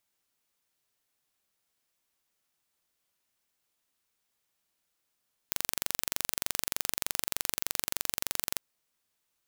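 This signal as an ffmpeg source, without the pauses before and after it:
ffmpeg -f lavfi -i "aevalsrc='0.794*eq(mod(n,1893),0)':duration=3.09:sample_rate=44100" out.wav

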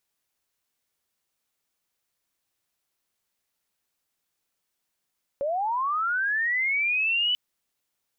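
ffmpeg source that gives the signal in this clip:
ffmpeg -f lavfi -i "aevalsrc='pow(10,(-24+3*t/1.94)/20)*sin(2*PI*(540*t+2460*t*t/(2*1.94)))':duration=1.94:sample_rate=44100" out.wav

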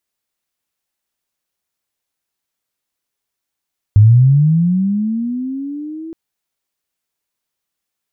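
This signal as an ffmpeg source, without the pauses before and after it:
ffmpeg -f lavfi -i "aevalsrc='pow(10,(-3-23*t/2.17)/20)*sin(2*PI*(100*t+230*t*t/(2*2.17)))':duration=2.17:sample_rate=44100" out.wav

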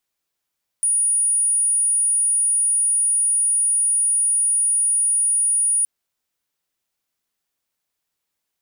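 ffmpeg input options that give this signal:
ffmpeg -f lavfi -i "aevalsrc='0.168*sin(2*PI*9620*t)':duration=5.02:sample_rate=44100" out.wav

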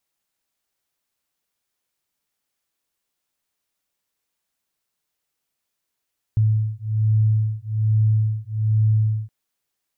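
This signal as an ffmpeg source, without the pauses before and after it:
ffmpeg -f lavfi -i "aevalsrc='0.106*(sin(2*PI*108*t)+sin(2*PI*109.2*t))':duration=2.92:sample_rate=44100" out.wav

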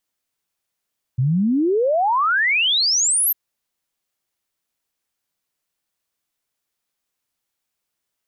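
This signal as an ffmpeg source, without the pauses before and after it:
ffmpeg -f lavfi -i "aevalsrc='0.178*clip(min(t,2.15-t)/0.01,0,1)*sin(2*PI*120*2.15/log(13000/120)*(exp(log(13000/120)*t/2.15)-1))':duration=2.15:sample_rate=44100" out.wav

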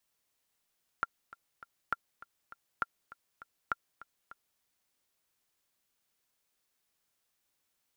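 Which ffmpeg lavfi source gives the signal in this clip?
ffmpeg -f lavfi -i "aevalsrc='pow(10,(-16.5-18.5*gte(mod(t,3*60/201),60/201))/20)*sin(2*PI*1380*mod(t,60/201))*exp(-6.91*mod(t,60/201)/0.03)':duration=3.58:sample_rate=44100" out.wav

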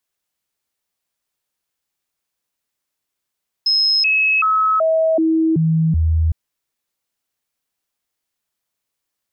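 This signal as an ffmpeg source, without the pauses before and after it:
ffmpeg -f lavfi -i "aevalsrc='0.237*clip(min(mod(t,0.38),0.38-mod(t,0.38))/0.005,0,1)*sin(2*PI*5150*pow(2,-floor(t/0.38)/1)*mod(t,0.38))':duration=2.66:sample_rate=44100" out.wav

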